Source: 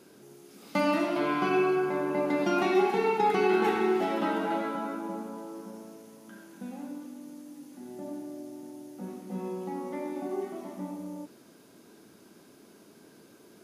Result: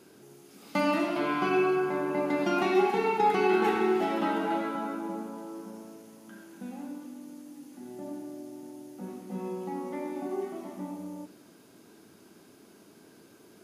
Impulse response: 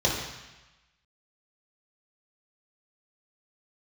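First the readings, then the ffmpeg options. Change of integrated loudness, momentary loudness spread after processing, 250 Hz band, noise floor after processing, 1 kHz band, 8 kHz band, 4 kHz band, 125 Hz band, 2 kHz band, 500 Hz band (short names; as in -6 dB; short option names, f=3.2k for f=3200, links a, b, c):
0.0 dB, 20 LU, 0.0 dB, -56 dBFS, +0.5 dB, -0.5 dB, 0.0 dB, -0.5 dB, +0.5 dB, -0.5 dB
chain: -filter_complex "[0:a]asplit=2[a][b];[1:a]atrim=start_sample=2205[c];[b][c]afir=irnorm=-1:irlink=0,volume=-30dB[d];[a][d]amix=inputs=2:normalize=0"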